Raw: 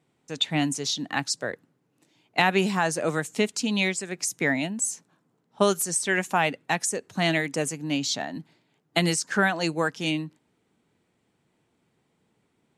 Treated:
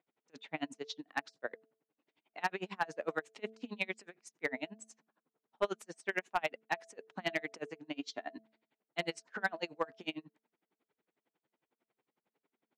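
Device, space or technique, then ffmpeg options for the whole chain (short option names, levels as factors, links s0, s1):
helicopter radio: -filter_complex "[0:a]highpass=340,lowpass=3000,aeval=exprs='val(0)*pow(10,-35*(0.5-0.5*cos(2*PI*11*n/s))/20)':c=same,asoftclip=type=hard:threshold=0.126,bandreject=f=221.1:t=h:w=4,bandreject=f=442.2:t=h:w=4,bandreject=f=663.3:t=h:w=4,asettb=1/sr,asplit=3[s0][s1][s2];[s0]atrim=end=7.944[s3];[s1]atrim=start=7.94:end=8.38,asetpts=PTS-STARTPTS,afade=t=in:d=0.004:c=qsin,afade=t=out:st=0.436:d=0.004:c=qsin,aecho=1:1:2.9:0.58,atrim=end_sample=19404[s4];[s2]atrim=start=8.376[s5];[s3][s4]acrossfade=d=0.004:c1=hsin:c2=qsin[s6];[s6][s5]acrossfade=d=0.004:c1=qsin:c2=hsin,volume=0.631"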